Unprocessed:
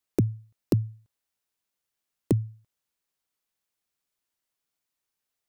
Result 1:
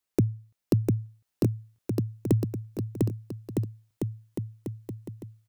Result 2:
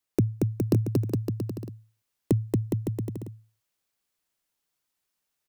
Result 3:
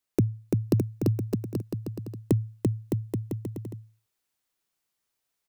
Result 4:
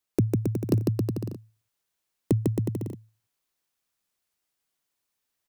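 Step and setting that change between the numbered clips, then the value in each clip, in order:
bouncing-ball echo, first gap: 700 ms, 230 ms, 340 ms, 150 ms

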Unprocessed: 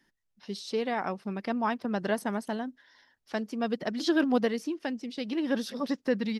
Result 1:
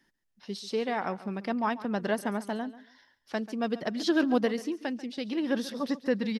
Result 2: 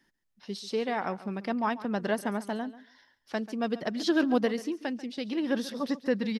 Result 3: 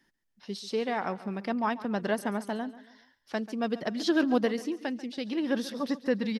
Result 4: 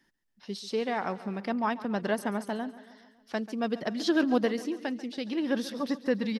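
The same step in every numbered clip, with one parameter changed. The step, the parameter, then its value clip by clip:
feedback delay, feedback: 22%, 15%, 39%, 58%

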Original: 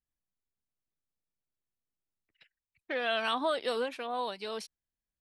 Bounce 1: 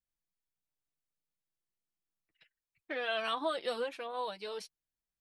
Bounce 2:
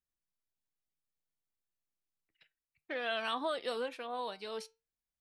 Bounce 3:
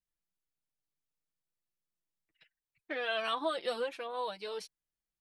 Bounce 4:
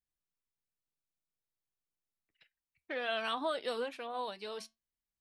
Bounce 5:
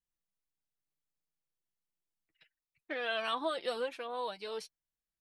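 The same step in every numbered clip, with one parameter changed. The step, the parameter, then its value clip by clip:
flange, regen: -25%, +84%, -1%, -80%, +30%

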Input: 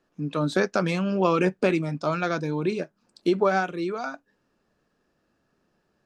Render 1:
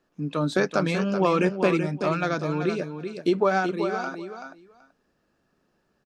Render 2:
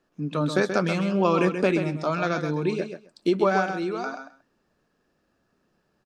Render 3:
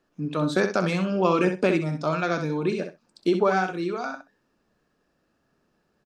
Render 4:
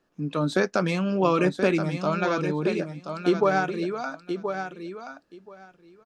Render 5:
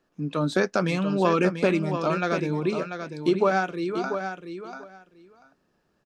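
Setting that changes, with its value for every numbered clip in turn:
feedback delay, time: 381 ms, 131 ms, 64 ms, 1027 ms, 690 ms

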